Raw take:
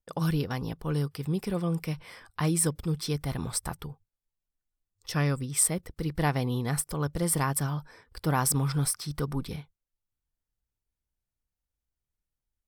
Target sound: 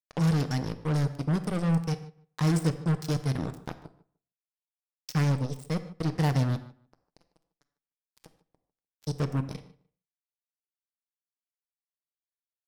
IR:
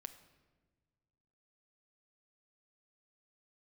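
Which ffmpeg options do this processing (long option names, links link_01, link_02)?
-filter_complex "[0:a]highpass=frequency=89:width=0.5412,highpass=frequency=89:width=1.3066,deesser=0.7,lowpass=frequency=8200:width=0.5412,lowpass=frequency=8200:width=1.3066,lowshelf=frequency=220:gain=11.5,asplit=3[link_01][link_02][link_03];[link_01]afade=type=out:start_time=6.55:duration=0.02[link_04];[link_02]acompressor=threshold=-33dB:ratio=20,afade=type=in:start_time=6.55:duration=0.02,afade=type=out:start_time=9.02:duration=0.02[link_05];[link_03]afade=type=in:start_time=9.02:duration=0.02[link_06];[link_04][link_05][link_06]amix=inputs=3:normalize=0,aexciter=amount=2.6:drive=5.4:freq=4600,acrusher=bits=3:mix=0:aa=0.5,asplit=2[link_07][link_08];[link_08]adelay=150,lowpass=frequency=2800:poles=1,volume=-19dB,asplit=2[link_09][link_10];[link_10]adelay=150,lowpass=frequency=2800:poles=1,volume=0.17[link_11];[link_07][link_09][link_11]amix=inputs=3:normalize=0[link_12];[1:a]atrim=start_sample=2205,afade=type=out:start_time=0.21:duration=0.01,atrim=end_sample=9702[link_13];[link_12][link_13]afir=irnorm=-1:irlink=0"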